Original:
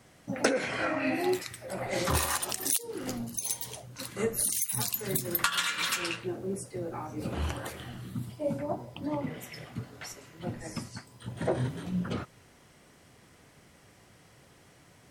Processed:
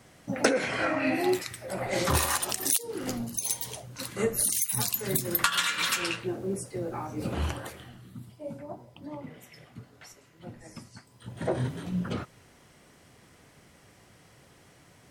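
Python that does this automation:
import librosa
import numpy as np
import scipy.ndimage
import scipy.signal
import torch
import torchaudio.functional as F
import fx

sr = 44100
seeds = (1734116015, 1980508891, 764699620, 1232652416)

y = fx.gain(x, sr, db=fx.line((7.43, 2.5), (8.01, -7.5), (10.85, -7.5), (11.58, 1.0)))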